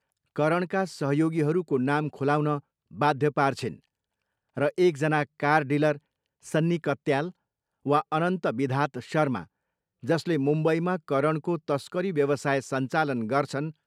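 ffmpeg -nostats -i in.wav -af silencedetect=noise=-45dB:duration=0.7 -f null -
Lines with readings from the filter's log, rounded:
silence_start: 3.76
silence_end: 4.57 | silence_duration: 0.80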